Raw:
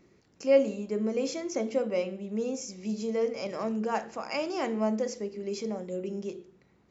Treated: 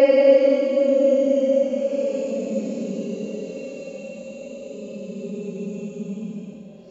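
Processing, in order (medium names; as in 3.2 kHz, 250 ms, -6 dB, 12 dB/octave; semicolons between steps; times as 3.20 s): de-hum 49.32 Hz, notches 11; Paulstretch 21×, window 0.05 s, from 0.55 s; trim +3.5 dB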